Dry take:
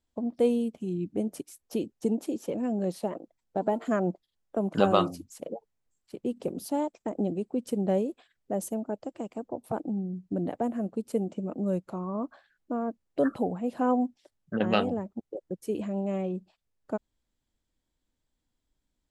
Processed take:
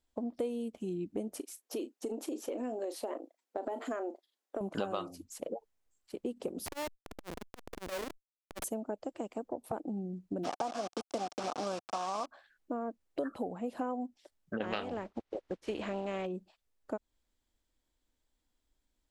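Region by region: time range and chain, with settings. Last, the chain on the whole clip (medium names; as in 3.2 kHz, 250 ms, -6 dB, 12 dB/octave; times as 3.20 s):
1.37–4.61 s: brick-wall FIR high-pass 230 Hz + doubling 36 ms -14 dB + compression, threshold -29 dBFS
6.66–8.64 s: high-pass 480 Hz 6 dB/octave + Schmitt trigger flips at -36 dBFS + transformer saturation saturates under 290 Hz
10.43–12.25 s: spectral peaks clipped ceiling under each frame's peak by 15 dB + word length cut 6-bit, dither none + cabinet simulation 130–8100 Hz, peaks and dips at 400 Hz -5 dB, 740 Hz +10 dB, 1.2 kHz +7 dB, 1.9 kHz -7 dB, 5.4 kHz +6 dB
14.62–16.25 s: spectral contrast reduction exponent 0.63 + low-pass 3.6 kHz
whole clip: peaking EQ 140 Hz -9.5 dB 1.2 oct; compression 5:1, threshold -34 dBFS; trim +1 dB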